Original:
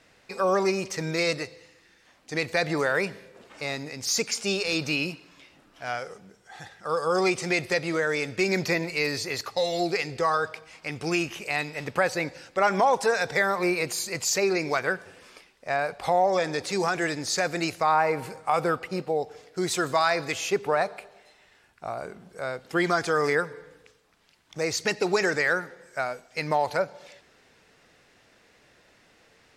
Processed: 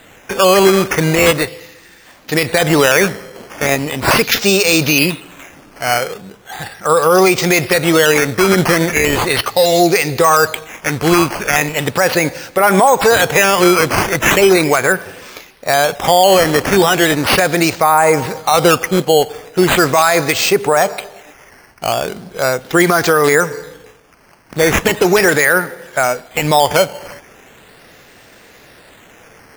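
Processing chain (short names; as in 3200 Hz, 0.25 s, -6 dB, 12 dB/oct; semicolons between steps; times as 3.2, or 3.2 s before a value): decimation with a swept rate 8×, swing 100% 0.38 Hz; maximiser +17.5 dB; gain -1 dB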